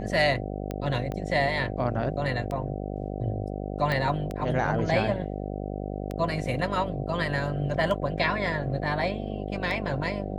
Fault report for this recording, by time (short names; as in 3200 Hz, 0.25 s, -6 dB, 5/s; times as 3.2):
buzz 50 Hz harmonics 15 -33 dBFS
tick 33 1/3 rpm -20 dBFS
1.12 pop -21 dBFS
3.92 pop -16 dBFS